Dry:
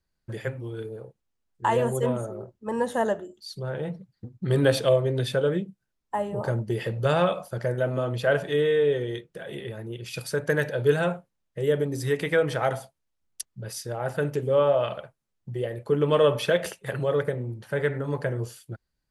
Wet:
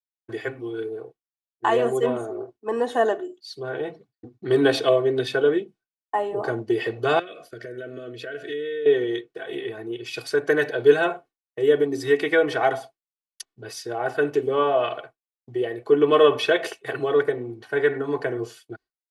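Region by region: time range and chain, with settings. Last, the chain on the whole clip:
7.19–8.86 s: compression 4:1, threshold -34 dBFS + Butterworth band-stop 900 Hz, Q 1.2
whole clip: expander -43 dBFS; three-band isolator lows -21 dB, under 170 Hz, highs -12 dB, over 5.6 kHz; comb 2.7 ms, depth 89%; trim +2.5 dB

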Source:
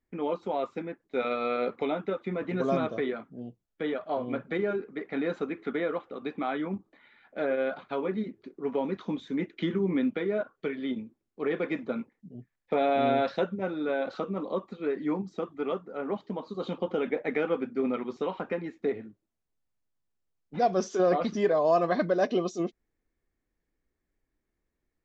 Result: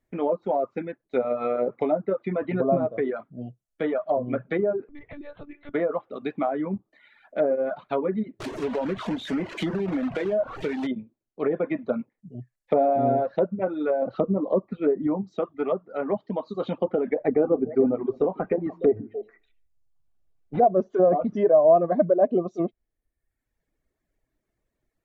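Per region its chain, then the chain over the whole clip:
4.89–5.74 s: peaking EQ 1.3 kHz -5.5 dB 0.32 oct + compression 16:1, threshold -40 dBFS + monotone LPC vocoder at 8 kHz 290 Hz
8.40–10.87 s: jump at every zero crossing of -34 dBFS + compression 5:1, threshold -28 dBFS + companded quantiser 4-bit
14.02–15.07 s: low-pass 4.4 kHz + bass shelf 410 Hz +6.5 dB
17.22–20.64 s: tilt EQ -2 dB/octave + comb 2.6 ms, depth 32% + repeats whose band climbs or falls 148 ms, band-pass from 210 Hz, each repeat 1.4 oct, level -7 dB
whole clip: reverb removal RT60 0.91 s; graphic EQ with 31 bands 125 Hz +6 dB, 630 Hz +8 dB, 5 kHz -3 dB; low-pass that closes with the level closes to 720 Hz, closed at -23.5 dBFS; trim +4.5 dB

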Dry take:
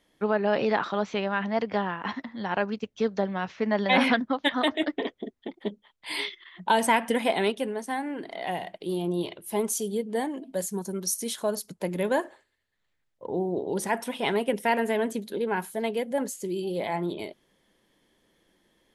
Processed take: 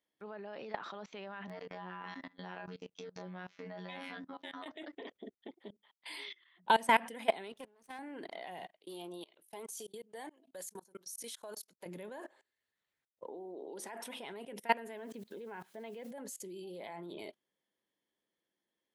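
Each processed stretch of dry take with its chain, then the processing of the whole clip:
1.47–4.66 s: compression 12:1, threshold -31 dBFS + robot voice 91 Hz + doubling 27 ms -5 dB
7.52–7.99 s: partial rectifier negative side -12 dB + peaking EQ 88 Hz -6.5 dB 1.9 oct + level held to a coarse grid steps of 11 dB
8.67–11.86 s: high-pass 740 Hz 6 dB/octave + level held to a coarse grid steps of 19 dB
13.25–14.07 s: high-pass 240 Hz 24 dB/octave + treble shelf 10 kHz -3.5 dB
14.97–16.11 s: low-pass 3.6 kHz + word length cut 10-bit, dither triangular
whole clip: high-pass 250 Hz 6 dB/octave; level held to a coarse grid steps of 22 dB; trim -1.5 dB

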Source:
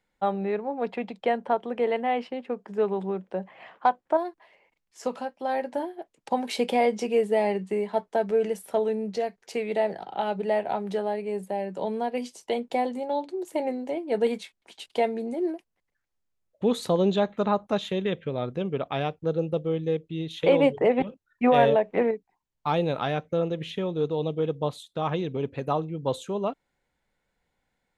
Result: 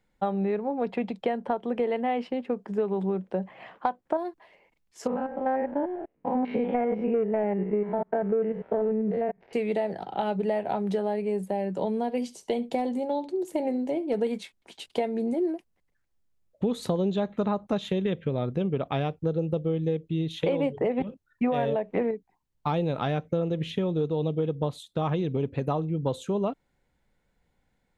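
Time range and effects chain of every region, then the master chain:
5.07–9.53 s: spectrogram pixelated in time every 100 ms + waveshaping leveller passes 1 + low-pass 2.1 kHz 24 dB/octave
11.90–14.20 s: peaking EQ 1.4 kHz -3 dB 2 oct + delay 71 ms -20 dB + hard clipper -18 dBFS
whole clip: bass shelf 360 Hz +8.5 dB; compression, threshold -23 dBFS

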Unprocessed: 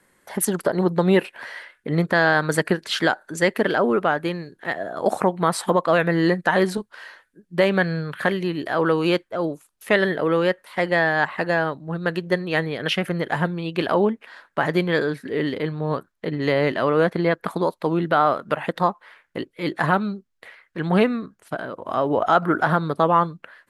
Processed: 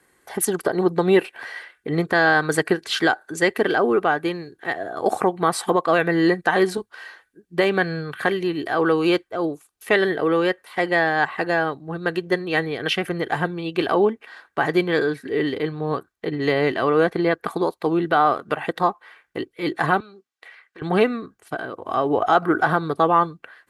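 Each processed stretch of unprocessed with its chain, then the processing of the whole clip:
20.00–20.82 s: frequency weighting A + compression 4:1, threshold -41 dBFS
whole clip: high-pass 42 Hz; comb 2.6 ms, depth 42%

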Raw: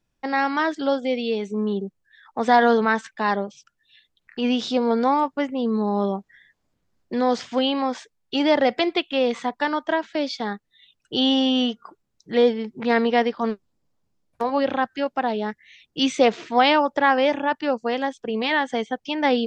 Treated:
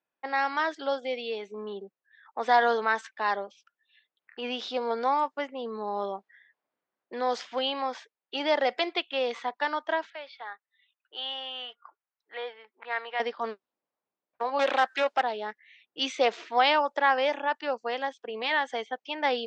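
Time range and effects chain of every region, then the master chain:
10.10–13.20 s: high-pass 950 Hz + distance through air 260 m
14.59–15.22 s: overdrive pedal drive 17 dB, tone 5.3 kHz, clips at -9 dBFS + loudspeaker Doppler distortion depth 0.2 ms
whole clip: high-pass 520 Hz 12 dB/octave; level-controlled noise filter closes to 2.3 kHz, open at -16.5 dBFS; trim -4 dB

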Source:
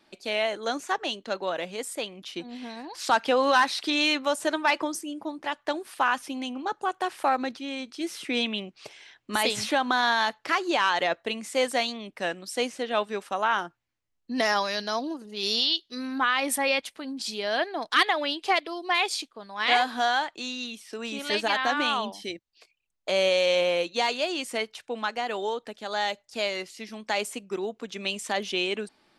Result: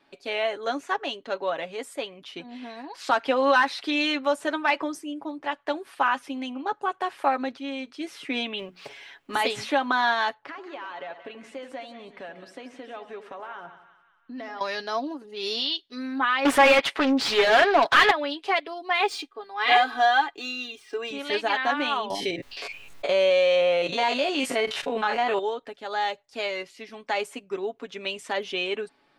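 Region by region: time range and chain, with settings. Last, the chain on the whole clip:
8.59–9.48 s: companding laws mixed up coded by mu + hum notches 60/120/180/240/300/360/420 Hz
10.34–14.61 s: compression 4:1, threshold -36 dBFS + low-pass 2.8 kHz 6 dB/octave + two-band feedback delay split 1.2 kHz, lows 84 ms, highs 184 ms, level -10.5 dB
16.45–18.11 s: overdrive pedal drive 28 dB, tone 3.8 kHz, clips at -10 dBFS + loudspeaker Doppler distortion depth 0.3 ms
19.00–21.11 s: median filter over 3 samples + comb 2.5 ms, depth 85%
22.10–25.39 s: spectrogram pixelated in time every 50 ms + level flattener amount 70%
whole clip: tone controls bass -4 dB, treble -10 dB; comb 7.2 ms, depth 51%

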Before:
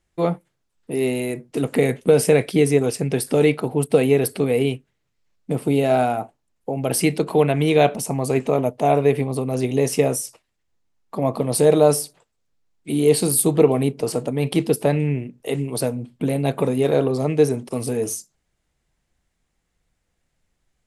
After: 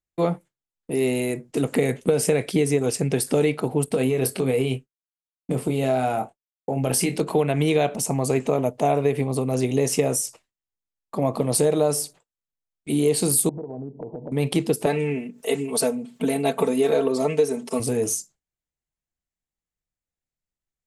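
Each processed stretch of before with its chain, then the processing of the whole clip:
3.85–7.21 s: expander -44 dBFS + compression 4:1, threshold -18 dBFS + doubling 23 ms -7 dB
13.49–14.32 s: Chebyshev low-pass 960 Hz, order 6 + compression 16:1, threshold -29 dBFS
14.86–17.80 s: high-pass 310 Hz 6 dB/octave + comb 4.5 ms, depth 94% + upward compressor, threshold -32 dBFS
whole clip: peaking EQ 7.1 kHz +5.5 dB 0.56 oct; compression, threshold -16 dBFS; gate with hold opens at -38 dBFS

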